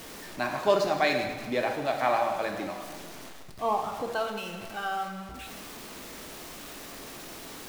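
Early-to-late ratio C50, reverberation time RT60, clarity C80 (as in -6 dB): 5.5 dB, 1.5 s, 7.0 dB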